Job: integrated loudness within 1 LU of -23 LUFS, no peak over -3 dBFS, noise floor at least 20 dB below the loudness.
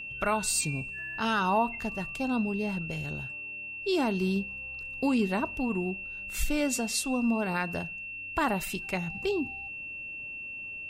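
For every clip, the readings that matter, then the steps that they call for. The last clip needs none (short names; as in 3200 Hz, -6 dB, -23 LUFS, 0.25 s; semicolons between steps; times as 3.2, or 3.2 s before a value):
steady tone 2700 Hz; tone level -37 dBFS; loudness -30.5 LUFS; peak -16.5 dBFS; loudness target -23.0 LUFS
-> notch 2700 Hz, Q 30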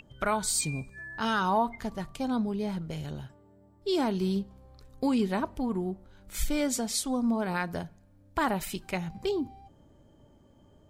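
steady tone none; loudness -30.5 LUFS; peak -16.5 dBFS; loudness target -23.0 LUFS
-> gain +7.5 dB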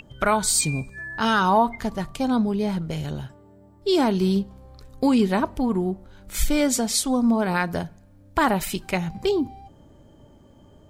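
loudness -23.0 LUFS; peak -9.0 dBFS; noise floor -52 dBFS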